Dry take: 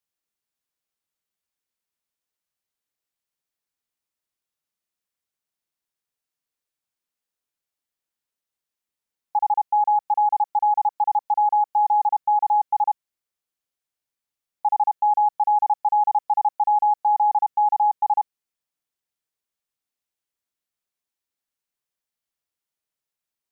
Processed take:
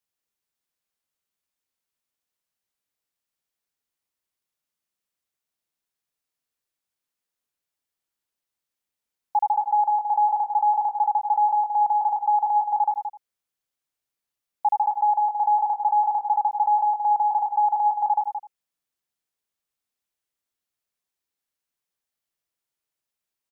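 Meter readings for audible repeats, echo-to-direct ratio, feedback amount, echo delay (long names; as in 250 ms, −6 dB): 3, −7.5 dB, repeats not evenly spaced, 83 ms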